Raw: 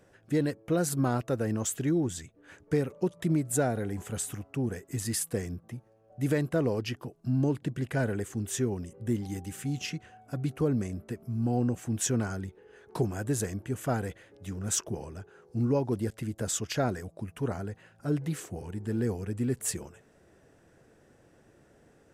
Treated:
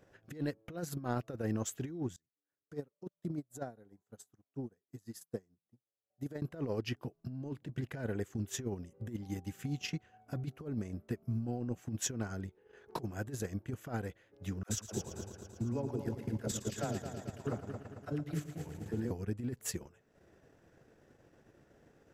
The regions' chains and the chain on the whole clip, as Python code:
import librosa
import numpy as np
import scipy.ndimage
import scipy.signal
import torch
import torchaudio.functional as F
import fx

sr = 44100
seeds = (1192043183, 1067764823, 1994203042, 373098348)

y = fx.chain(x, sr, fx.highpass(hz=120.0, slope=12),
    fx.peak_eq(hz=2400.0, db=-9.5, octaves=0.88),
    fx.upward_expand(threshold_db=-43.0, expansion=2.5), at=(2.16, 6.42))
y = fx.chain(y, sr, fx.level_steps(step_db=11),
    fx.dispersion(late='lows', ms=64.0, hz=490.0),
    fx.echo_heads(ms=112, heads='first and second', feedback_pct=62, wet_db=-9.0), at=(14.63, 19.11))
y = fx.peak_eq(y, sr, hz=9000.0, db=-13.5, octaves=0.3)
y = fx.transient(y, sr, attack_db=4, sustain_db=-8)
y = fx.over_compress(y, sr, threshold_db=-29.0, ratio=-0.5)
y = y * librosa.db_to_amplitude(-6.0)